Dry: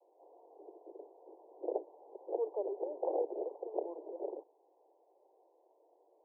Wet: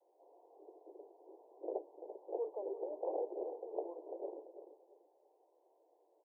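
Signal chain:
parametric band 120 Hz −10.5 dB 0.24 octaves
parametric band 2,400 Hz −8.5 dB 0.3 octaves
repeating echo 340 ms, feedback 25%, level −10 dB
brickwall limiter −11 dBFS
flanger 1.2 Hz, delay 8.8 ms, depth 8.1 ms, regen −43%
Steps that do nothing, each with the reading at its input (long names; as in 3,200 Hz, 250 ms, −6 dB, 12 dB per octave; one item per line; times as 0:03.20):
parametric band 120 Hz: nothing at its input below 270 Hz
parametric band 2,400 Hz: nothing at its input above 1,000 Hz
brickwall limiter −11 dBFS: peak of its input −21.0 dBFS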